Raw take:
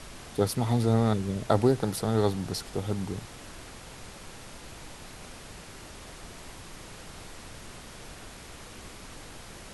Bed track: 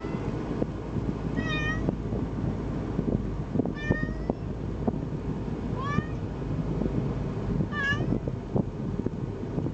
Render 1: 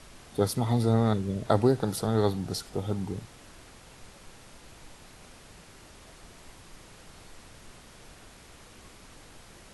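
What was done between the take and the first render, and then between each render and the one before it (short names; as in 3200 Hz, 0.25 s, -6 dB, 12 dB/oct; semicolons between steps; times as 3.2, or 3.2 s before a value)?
noise print and reduce 6 dB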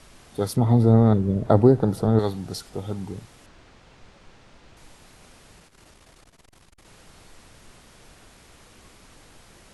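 0.56–2.19 tilt shelf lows +8.5 dB, about 1400 Hz; 3.46–4.77 air absorption 100 m; 5.58–6.85 core saturation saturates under 160 Hz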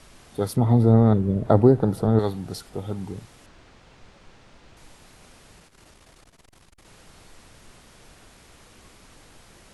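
dynamic EQ 5800 Hz, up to -4 dB, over -54 dBFS, Q 1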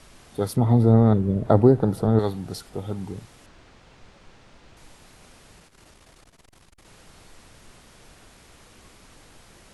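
nothing audible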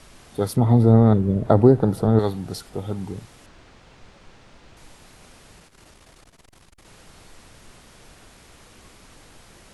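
gain +2 dB; limiter -2 dBFS, peak gain reduction 2 dB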